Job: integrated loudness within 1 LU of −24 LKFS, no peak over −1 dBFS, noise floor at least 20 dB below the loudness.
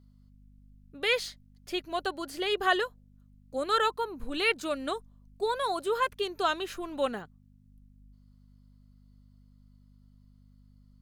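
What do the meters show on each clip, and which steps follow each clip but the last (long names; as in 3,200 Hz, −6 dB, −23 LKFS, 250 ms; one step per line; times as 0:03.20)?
mains hum 50 Hz; hum harmonics up to 250 Hz; level of the hum −55 dBFS; integrated loudness −30.5 LKFS; sample peak −11.5 dBFS; target loudness −24.0 LKFS
→ hum removal 50 Hz, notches 5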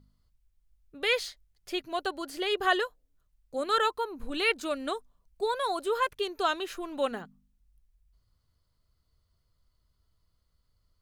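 mains hum none found; integrated loudness −30.5 LKFS; sample peak −11.5 dBFS; target loudness −24.0 LKFS
→ level +6.5 dB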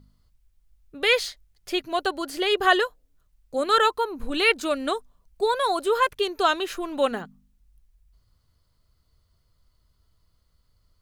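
integrated loudness −24.0 LKFS; sample peak −5.0 dBFS; background noise floor −68 dBFS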